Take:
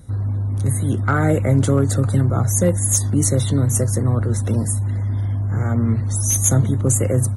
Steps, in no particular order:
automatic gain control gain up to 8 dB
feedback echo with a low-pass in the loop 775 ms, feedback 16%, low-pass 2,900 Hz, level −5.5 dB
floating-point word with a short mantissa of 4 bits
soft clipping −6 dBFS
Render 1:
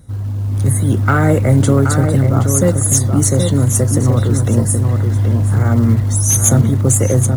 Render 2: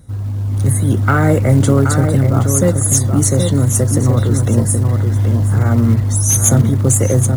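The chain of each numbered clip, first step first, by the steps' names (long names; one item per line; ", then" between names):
floating-point word with a short mantissa, then soft clipping, then feedback echo with a low-pass in the loop, then automatic gain control
soft clipping, then feedback echo with a low-pass in the loop, then floating-point word with a short mantissa, then automatic gain control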